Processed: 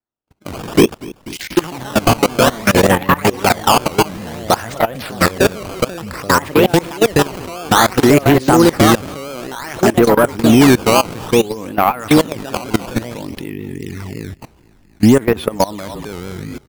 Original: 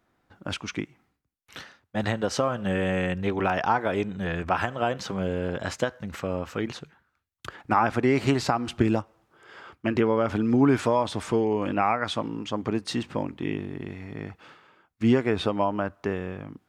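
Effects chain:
noise reduction from a noise print of the clip's start 26 dB
delay with pitch and tempo change per echo 172 ms, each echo +4 semitones, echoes 2
in parallel at −0.5 dB: downward compressor 16 to 1, threshold −30 dBFS, peak gain reduction 16 dB
0:00.78–0:01.59: on the sum: low shelf with overshoot 510 Hz +9 dB, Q 3
sample-and-hold swept by an LFO 14×, swing 160% 0.57 Hz
soft clipping −12 dBFS, distortion −16 dB
pitch vibrato 5.3 Hz 90 cents
on a send: echo with shifted repeats 241 ms, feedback 47%, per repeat −31 Hz, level −17 dB
on the sum: output level in coarse steps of 22 dB
boost into a limiter +17.5 dB
level −1 dB

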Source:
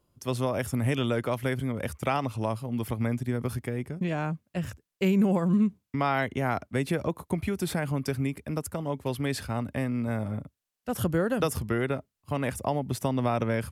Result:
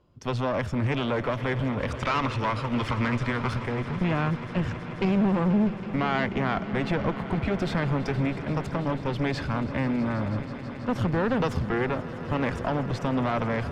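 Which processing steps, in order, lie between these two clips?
gain on a spectral selection 0:01.91–0:03.53, 880–11,000 Hz +10 dB
in parallel at +3 dB: brickwall limiter −21.5 dBFS, peak gain reduction 15 dB
on the sum: asymmetric clip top −29 dBFS, bottom −15 dBFS
high-frequency loss of the air 180 metres
echo that builds up and dies away 162 ms, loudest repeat 5, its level −17.5 dB

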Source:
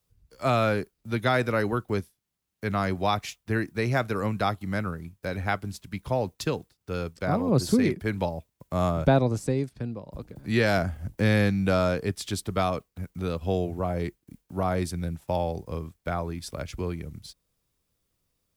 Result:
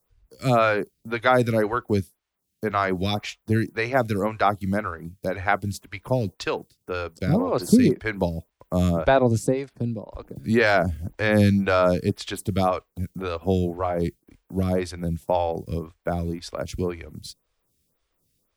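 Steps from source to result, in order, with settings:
phaser with staggered stages 1.9 Hz
level +7 dB

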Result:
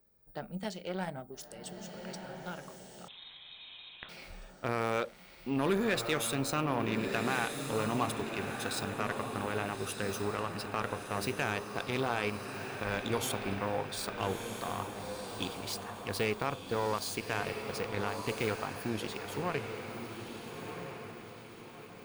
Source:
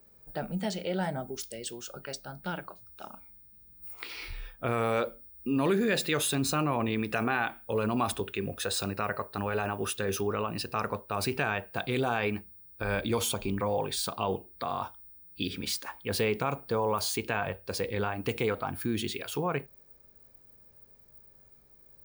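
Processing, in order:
harmonic generator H 7 −22 dB, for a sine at −13.5 dBFS
feedback delay with all-pass diffusion 1,314 ms, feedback 45%, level −6 dB
0:03.08–0:04.09: voice inversion scrambler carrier 3,900 Hz
level −2.5 dB

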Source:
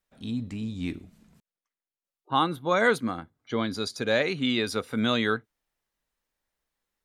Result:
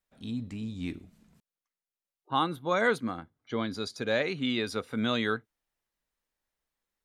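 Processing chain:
0:02.81–0:05.14: high-shelf EQ 7,200 Hz −5.5 dB
level −3.5 dB

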